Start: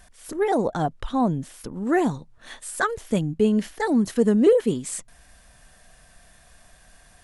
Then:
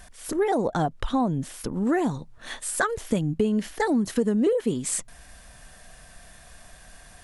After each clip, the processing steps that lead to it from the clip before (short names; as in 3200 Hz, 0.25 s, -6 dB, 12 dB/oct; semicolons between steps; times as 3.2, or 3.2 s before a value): compressor 5:1, threshold -25 dBFS, peak gain reduction 12 dB; gain +4.5 dB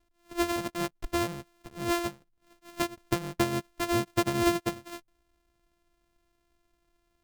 sample sorter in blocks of 128 samples; upward expander 2.5:1, over -34 dBFS; gain -1.5 dB